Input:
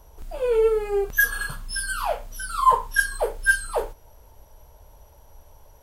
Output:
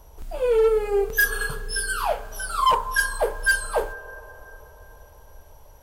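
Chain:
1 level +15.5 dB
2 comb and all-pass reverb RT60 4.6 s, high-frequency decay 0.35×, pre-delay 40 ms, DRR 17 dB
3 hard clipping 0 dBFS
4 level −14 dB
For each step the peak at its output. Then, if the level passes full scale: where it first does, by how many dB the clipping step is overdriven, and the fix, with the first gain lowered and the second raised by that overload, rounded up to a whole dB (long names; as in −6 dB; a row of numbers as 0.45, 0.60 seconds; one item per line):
+9.5, +9.5, 0.0, −14.0 dBFS
step 1, 9.5 dB
step 1 +5.5 dB, step 4 −4 dB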